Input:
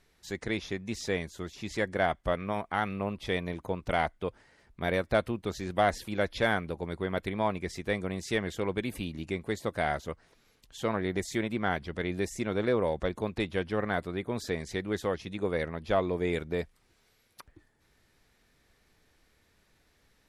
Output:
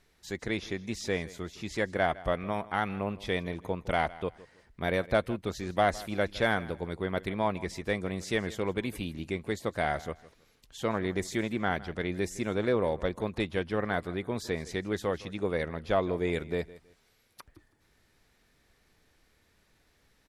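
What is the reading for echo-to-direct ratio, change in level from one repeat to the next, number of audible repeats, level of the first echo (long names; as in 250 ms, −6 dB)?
−18.5 dB, −12.0 dB, 2, −19.0 dB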